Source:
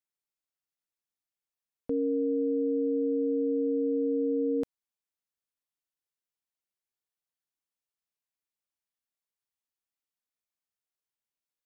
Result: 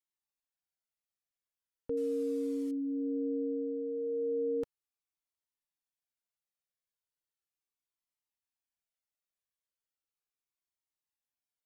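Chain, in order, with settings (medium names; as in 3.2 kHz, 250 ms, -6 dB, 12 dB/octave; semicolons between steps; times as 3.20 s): 1.97–2.71 s: one-bit delta coder 64 kbps, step -45 dBFS; Shepard-style flanger falling 0.37 Hz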